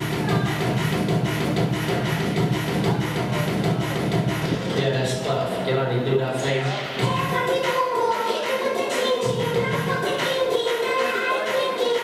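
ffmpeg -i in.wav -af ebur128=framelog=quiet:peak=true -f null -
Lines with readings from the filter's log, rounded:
Integrated loudness:
  I:         -22.9 LUFS
  Threshold: -32.8 LUFS
Loudness range:
  LRA:         0.8 LU
  Threshold: -42.9 LUFS
  LRA low:   -23.3 LUFS
  LRA high:  -22.5 LUFS
True peak:
  Peak:       -9.2 dBFS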